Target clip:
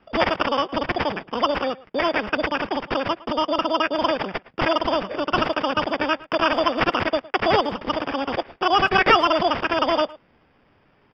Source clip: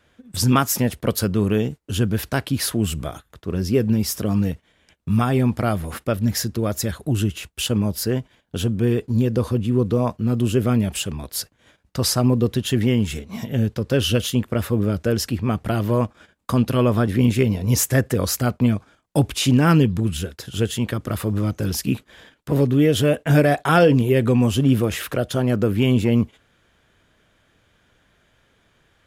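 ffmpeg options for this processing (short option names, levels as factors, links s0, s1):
-filter_complex "[0:a]acrossover=split=230[s0][s1];[s0]acompressor=threshold=0.0316:ratio=6[s2];[s1]acrusher=samples=28:mix=1:aa=0.000001[s3];[s2][s3]amix=inputs=2:normalize=0,asetrate=115101,aresample=44100,aresample=11025,aresample=44100,asplit=2[s4][s5];[s5]adelay=110,highpass=300,lowpass=3400,asoftclip=type=hard:threshold=0.251,volume=0.1[s6];[s4][s6]amix=inputs=2:normalize=0,volume=1.19"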